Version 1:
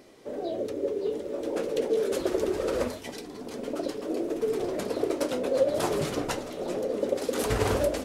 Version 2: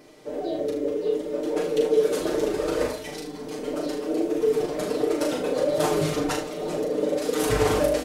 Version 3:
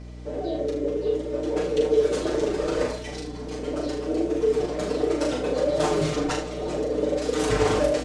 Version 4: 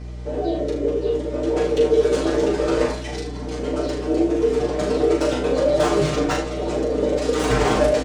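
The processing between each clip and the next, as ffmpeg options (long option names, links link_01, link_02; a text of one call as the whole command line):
ffmpeg -i in.wav -filter_complex "[0:a]aecho=1:1:6.6:0.8,asplit=2[link_01][link_02];[link_02]aecho=0:1:39|77:0.631|0.335[link_03];[link_01][link_03]amix=inputs=2:normalize=0" out.wav
ffmpeg -i in.wav -af "lowpass=frequency=8400:width=0.5412,lowpass=frequency=8400:width=1.3066,aeval=exprs='val(0)+0.0126*(sin(2*PI*60*n/s)+sin(2*PI*2*60*n/s)/2+sin(2*PI*3*60*n/s)/3+sin(2*PI*4*60*n/s)/4+sin(2*PI*5*60*n/s)/5)':channel_layout=same" out.wav
ffmpeg -i in.wav -filter_complex "[0:a]acrossover=split=3500[link_01][link_02];[link_01]asplit=2[link_03][link_04];[link_04]adelay=15,volume=-3dB[link_05];[link_03][link_05]amix=inputs=2:normalize=0[link_06];[link_02]volume=35dB,asoftclip=hard,volume=-35dB[link_07];[link_06][link_07]amix=inputs=2:normalize=0,volume=3.5dB" out.wav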